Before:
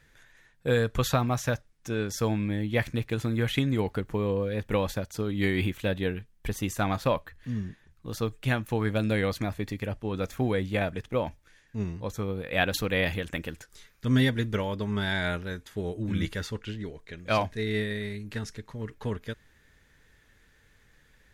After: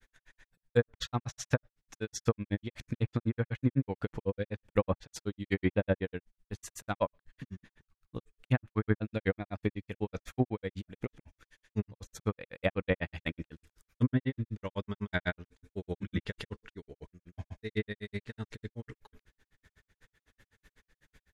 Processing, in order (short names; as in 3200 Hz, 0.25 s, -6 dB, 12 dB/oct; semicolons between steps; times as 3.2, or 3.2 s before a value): tremolo 2.7 Hz, depth 66%; grains 76 ms, grains 8/s, pitch spread up and down by 0 st; treble ducked by the level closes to 1400 Hz, closed at -28 dBFS; gain +3.5 dB